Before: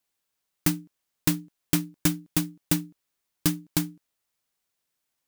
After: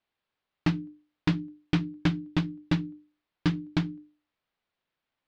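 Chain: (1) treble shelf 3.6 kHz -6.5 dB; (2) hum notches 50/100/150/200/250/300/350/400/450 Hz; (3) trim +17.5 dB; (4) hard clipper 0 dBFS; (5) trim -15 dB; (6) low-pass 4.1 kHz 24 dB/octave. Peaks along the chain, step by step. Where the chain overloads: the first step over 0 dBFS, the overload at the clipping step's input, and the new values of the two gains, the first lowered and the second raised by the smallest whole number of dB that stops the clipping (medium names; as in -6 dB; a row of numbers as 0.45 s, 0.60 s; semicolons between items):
-9.0 dBFS, -10.0 dBFS, +7.5 dBFS, 0.0 dBFS, -15.0 dBFS, -14.5 dBFS; step 3, 7.5 dB; step 3 +9.5 dB, step 5 -7 dB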